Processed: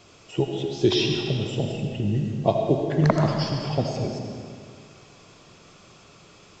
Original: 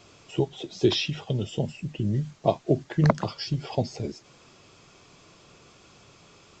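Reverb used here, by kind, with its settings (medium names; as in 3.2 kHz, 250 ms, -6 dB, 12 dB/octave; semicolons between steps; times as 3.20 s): algorithmic reverb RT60 2.3 s, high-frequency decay 0.8×, pre-delay 40 ms, DRR 2 dB; trim +1 dB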